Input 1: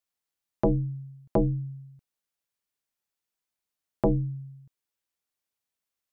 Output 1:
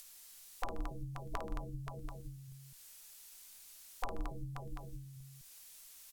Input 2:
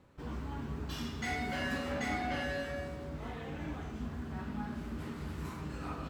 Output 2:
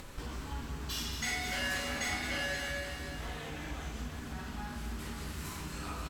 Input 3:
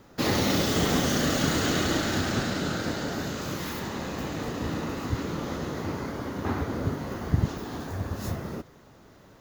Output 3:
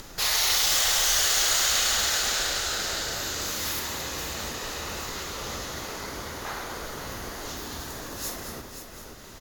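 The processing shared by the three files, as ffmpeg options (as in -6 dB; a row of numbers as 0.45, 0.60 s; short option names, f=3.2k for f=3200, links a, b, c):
-af "afftfilt=real='re*lt(hypot(re,im),0.141)':imag='im*lt(hypot(re,im),0.141)':win_size=1024:overlap=0.75,crystalizer=i=2.5:c=0,aecho=1:1:53|129|171|220|528|736:0.376|0.133|0.119|0.355|0.316|0.126,acompressor=mode=upward:threshold=-33dB:ratio=2.5,aemphasis=mode=reproduction:type=riaa,crystalizer=i=5:c=0,equalizer=f=100:w=0.31:g=-15,volume=-2.5dB"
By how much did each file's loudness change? -18.5, +1.5, +3.5 LU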